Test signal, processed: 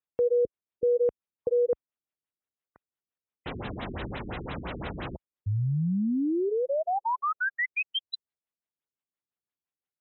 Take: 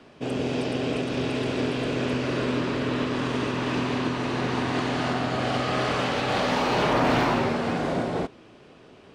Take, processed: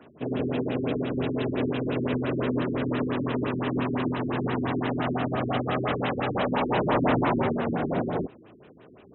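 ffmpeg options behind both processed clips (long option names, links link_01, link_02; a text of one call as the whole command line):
ffmpeg -i in.wav -af "highpass=52,afftfilt=real='re*lt(b*sr/1024,390*pow(4100/390,0.5+0.5*sin(2*PI*5.8*pts/sr)))':imag='im*lt(b*sr/1024,390*pow(4100/390,0.5+0.5*sin(2*PI*5.8*pts/sr)))':win_size=1024:overlap=0.75" out.wav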